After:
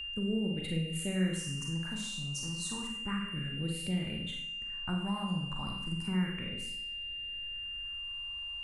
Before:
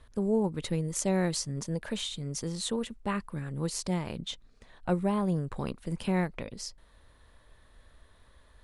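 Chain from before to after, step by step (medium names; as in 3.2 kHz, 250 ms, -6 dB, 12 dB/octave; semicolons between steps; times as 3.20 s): Schroeder reverb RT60 0.67 s, combs from 33 ms, DRR 0.5 dB; phase shifter stages 4, 0.32 Hz, lowest notch 430–1000 Hz; whistle 2.8 kHz -36 dBFS; in parallel at +2.5 dB: compression, threshold -34 dBFS, peak gain reduction 14.5 dB; on the sum: trim -9 dB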